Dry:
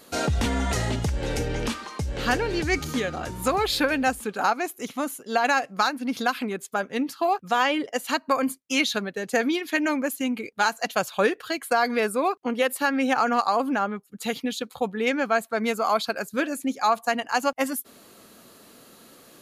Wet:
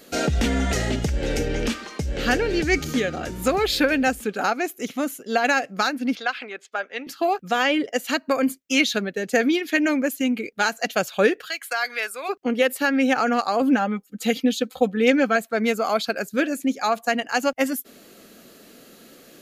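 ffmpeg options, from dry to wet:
ffmpeg -i in.wav -filter_complex "[0:a]asettb=1/sr,asplit=3[link_01][link_02][link_03];[link_01]atrim=end=6.154[link_04];[link_02]atrim=start=6.15:end=7.07,asetpts=PTS-STARTPTS,afade=type=in:duration=0.004:curve=qsin,afade=type=out:start_time=0.916:duration=0.004:curve=qsin,highpass=710,lowpass=3900[link_05];[link_03]atrim=start=7.066[link_06];[link_04][link_05]acrossfade=duration=0.004:curve1=hsin:curve2=qsin[link_07];[link_07][link_06]acrossfade=duration=0.004:curve1=qsin:curve2=hsin,asplit=3[link_08][link_09][link_10];[link_08]afade=type=out:start_time=11.45:duration=0.02[link_11];[link_09]highpass=1100,afade=type=in:start_time=11.45:duration=0.02,afade=type=out:start_time=12.28:duration=0.02[link_12];[link_10]afade=type=in:start_time=12.28:duration=0.02[link_13];[link_11][link_12][link_13]amix=inputs=3:normalize=0,asettb=1/sr,asplit=3[link_14][link_15][link_16];[link_14]atrim=end=13.614[link_17];[link_15]atrim=start=13.61:end=15.36,asetpts=PTS-STARTPTS,afade=type=in:duration=0.004:curve=qsin,afade=type=out:start_time=1.746:duration=0.004:curve=qsin,aecho=1:1:3.9:0.65,atrim=end_sample=77175[link_18];[link_16]atrim=start=15.356[link_19];[link_17][link_18]acrossfade=duration=0.004:curve1=hsin:curve2=qsin[link_20];[link_20][link_19]acrossfade=duration=0.004:curve1=qsin:curve2=hsin,equalizer=frequency=100:width_type=o:width=0.67:gain=-10,equalizer=frequency=1000:width_type=o:width=0.67:gain=-11,equalizer=frequency=4000:width_type=o:width=0.67:gain=-3,equalizer=frequency=10000:width_type=o:width=0.67:gain=-7,volume=5dB" out.wav

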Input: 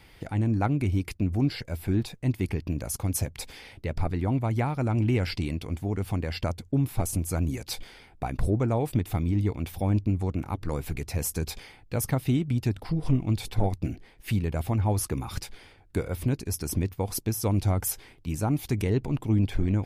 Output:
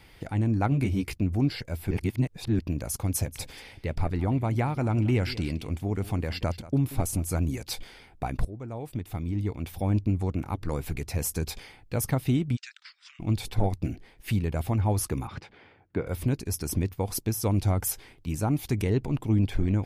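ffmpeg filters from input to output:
ffmpeg -i in.wav -filter_complex "[0:a]asettb=1/sr,asplit=3[link_01][link_02][link_03];[link_01]atrim=end=0.704[link_04];[link_02]atrim=start=0.7:end=1.18,asetpts=PTS-STARTPTS,afade=type=in:duration=0.004:curve=qsin,afade=type=out:start_time=0.476:duration=0.004:curve=qsin,asplit=2[link_05][link_06];[link_06]adelay=15,volume=-3dB[link_07];[link_05][link_07]amix=inputs=2:normalize=0,atrim=end_sample=21168[link_08];[link_03]atrim=start=1.176[link_09];[link_04][link_08]acrossfade=duration=0.004:curve1=hsin:curve2=qsin[link_10];[link_10][link_09]acrossfade=duration=0.004:curve1=qsin:curve2=hsin,asplit=3[link_11][link_12][link_13];[link_11]afade=type=out:start_time=3.26:duration=0.02[link_14];[link_12]aecho=1:1:183:0.15,afade=type=in:start_time=3.26:duration=0.02,afade=type=out:start_time=7.42:duration=0.02[link_15];[link_13]afade=type=in:start_time=7.42:duration=0.02[link_16];[link_14][link_15][link_16]amix=inputs=3:normalize=0,asplit=3[link_17][link_18][link_19];[link_17]afade=type=out:start_time=12.55:duration=0.02[link_20];[link_18]asuperpass=centerf=3400:order=12:qfactor=0.54,afade=type=in:start_time=12.55:duration=0.02,afade=type=out:start_time=13.19:duration=0.02[link_21];[link_19]afade=type=in:start_time=13.19:duration=0.02[link_22];[link_20][link_21][link_22]amix=inputs=3:normalize=0,asettb=1/sr,asplit=3[link_23][link_24][link_25];[link_23]atrim=end=15.274[link_26];[link_24]atrim=start=15.27:end=16.07,asetpts=PTS-STARTPTS,afade=type=in:duration=0.004:curve=qsin,afade=type=out:start_time=0.796:duration=0.004:curve=qsin,highpass=110,lowpass=2300[link_27];[link_25]atrim=start=16.066[link_28];[link_26][link_27]acrossfade=duration=0.004:curve1=hsin:curve2=qsin[link_29];[link_29][link_28]acrossfade=duration=0.004:curve1=qsin:curve2=hsin,asplit=4[link_30][link_31][link_32][link_33];[link_30]atrim=end=1.912[link_34];[link_31]atrim=start=1.908:end=2.592,asetpts=PTS-STARTPTS,areverse[link_35];[link_32]atrim=start=2.588:end=8.45,asetpts=PTS-STARTPTS,afade=type=out:start_time=5.858:duration=0.004:curve=hsin:silence=0.125893[link_36];[link_33]atrim=start=8.45,asetpts=PTS-STARTPTS,afade=type=in:duration=1.59:silence=0.125893[link_37];[link_34][link_35]acrossfade=duration=0.004:curve1=hsin:curve2=hsin[link_38];[link_36][link_37]concat=n=2:v=0:a=1[link_39];[link_38][link_39]acrossfade=duration=0.004:curve1=hsin:curve2=hsin" out.wav

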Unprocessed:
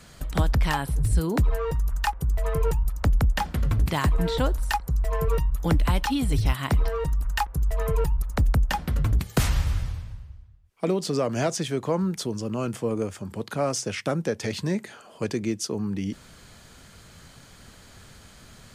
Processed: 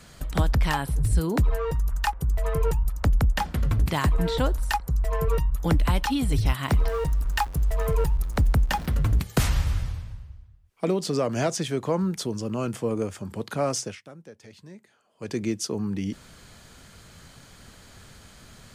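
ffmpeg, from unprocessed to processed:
ffmpeg -i in.wav -filter_complex "[0:a]asettb=1/sr,asplit=3[link_01][link_02][link_03];[link_01]atrim=end=6.684[link_04];[link_02]atrim=start=6.68:end=9.22,asetpts=PTS-STARTPTS,afade=type=in:duration=0.004:curve=qsin,afade=type=out:start_time=2.536:duration=0.004:curve=qsin,aeval=exprs='val(0)+0.5*0.0126*sgn(val(0))':channel_layout=same[link_05];[link_03]atrim=start=9.216[link_06];[link_04][link_05]acrossfade=duration=0.004:curve1=hsin:curve2=qsin[link_07];[link_07][link_06]acrossfade=duration=0.004:curve1=qsin:curve2=hsin,asplit=3[link_08][link_09][link_10];[link_08]atrim=end=14,asetpts=PTS-STARTPTS,afade=type=out:start_time=13.79:duration=0.21:silence=0.112202[link_11];[link_09]atrim=start=14:end=15.17,asetpts=PTS-STARTPTS,volume=-19dB[link_12];[link_10]atrim=start=15.17,asetpts=PTS-STARTPTS,afade=type=in:duration=0.21:silence=0.112202[link_13];[link_11][link_12][link_13]concat=n=3:v=0:a=1" out.wav

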